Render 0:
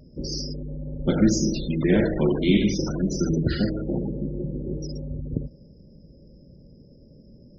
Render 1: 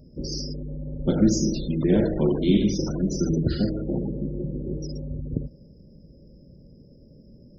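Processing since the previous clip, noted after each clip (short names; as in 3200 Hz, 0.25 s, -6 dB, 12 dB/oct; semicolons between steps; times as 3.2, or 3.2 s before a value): bell 2000 Hz -11 dB 1.1 oct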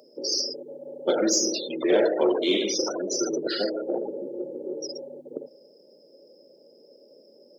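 HPF 440 Hz 24 dB/oct; in parallel at -9 dB: soft clip -27 dBFS, distortion -13 dB; on the sum: gain +6 dB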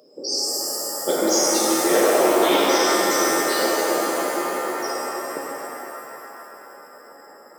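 shimmer reverb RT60 3.1 s, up +7 st, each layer -2 dB, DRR -2.5 dB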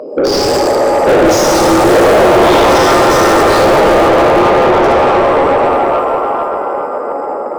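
Wiener smoothing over 25 samples; overdrive pedal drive 37 dB, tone 1900 Hz, clips at -5 dBFS; gain +4.5 dB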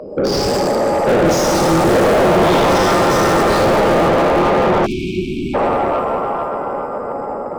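octaver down 1 oct, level -1 dB; spectral delete 4.86–5.54, 400–2200 Hz; gain -5.5 dB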